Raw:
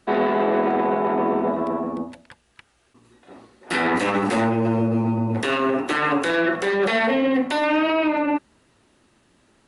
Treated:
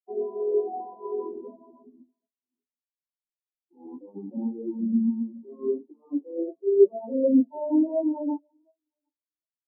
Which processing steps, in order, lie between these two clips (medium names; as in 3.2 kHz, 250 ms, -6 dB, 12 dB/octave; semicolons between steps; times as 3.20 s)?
backward echo that repeats 379 ms, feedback 52%, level -10 dB; elliptic band-pass 160–1000 Hz; spectral contrast expander 4:1; trim +3 dB